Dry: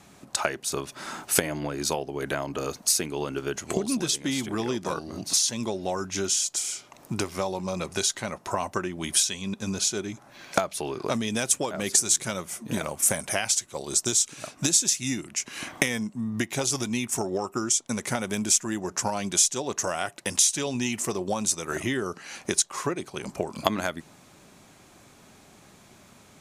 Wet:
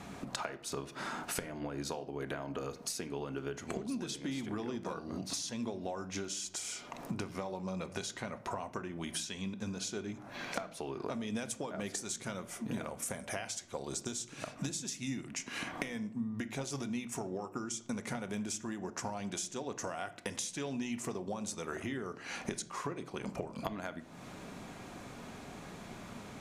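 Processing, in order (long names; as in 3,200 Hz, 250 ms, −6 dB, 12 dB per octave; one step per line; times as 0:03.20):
high-shelf EQ 4,200 Hz −11 dB
downward compressor 6 to 1, threshold −44 dBFS, peak gain reduction 24 dB
on a send: convolution reverb RT60 0.65 s, pre-delay 4 ms, DRR 10 dB
on the sum: level +6.5 dB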